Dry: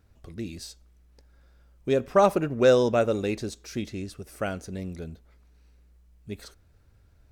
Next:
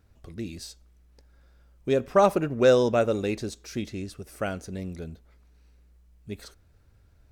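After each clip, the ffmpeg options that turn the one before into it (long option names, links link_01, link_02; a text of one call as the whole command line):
ffmpeg -i in.wav -af anull out.wav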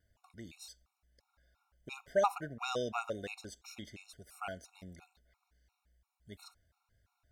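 ffmpeg -i in.wav -af "lowshelf=frequency=560:width_type=q:width=1.5:gain=-8,afftfilt=real='re*gt(sin(2*PI*2.9*pts/sr)*(1-2*mod(floor(b*sr/1024/730),2)),0)':imag='im*gt(sin(2*PI*2.9*pts/sr)*(1-2*mod(floor(b*sr/1024/730),2)),0)':win_size=1024:overlap=0.75,volume=-5.5dB" out.wav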